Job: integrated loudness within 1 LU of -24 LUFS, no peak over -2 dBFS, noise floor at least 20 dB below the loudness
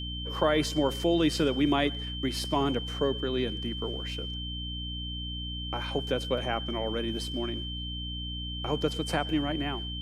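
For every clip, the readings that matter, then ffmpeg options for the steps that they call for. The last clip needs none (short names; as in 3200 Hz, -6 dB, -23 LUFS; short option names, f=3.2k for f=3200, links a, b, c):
hum 60 Hz; harmonics up to 300 Hz; hum level -35 dBFS; steady tone 3100 Hz; tone level -37 dBFS; loudness -30.0 LUFS; peak -12.5 dBFS; loudness target -24.0 LUFS
-> -af "bandreject=f=60:t=h:w=4,bandreject=f=120:t=h:w=4,bandreject=f=180:t=h:w=4,bandreject=f=240:t=h:w=4,bandreject=f=300:t=h:w=4"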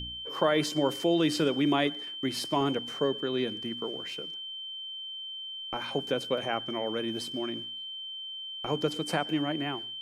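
hum none; steady tone 3100 Hz; tone level -37 dBFS
-> -af "bandreject=f=3.1k:w=30"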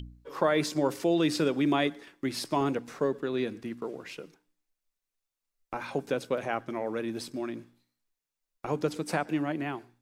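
steady tone none; loudness -30.5 LUFS; peak -13.0 dBFS; loudness target -24.0 LUFS
-> -af "volume=6.5dB"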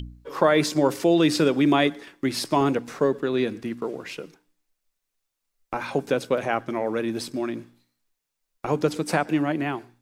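loudness -24.0 LUFS; peak -6.5 dBFS; noise floor -81 dBFS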